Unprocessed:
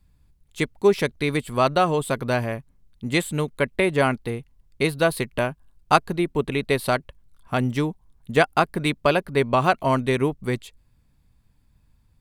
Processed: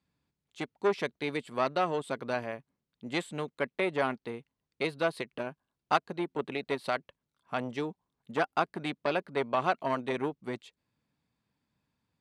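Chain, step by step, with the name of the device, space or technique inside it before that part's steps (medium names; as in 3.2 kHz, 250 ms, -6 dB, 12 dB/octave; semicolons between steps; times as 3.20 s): public-address speaker with an overloaded transformer (transformer saturation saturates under 1.2 kHz; band-pass 210–6000 Hz); trim -7.5 dB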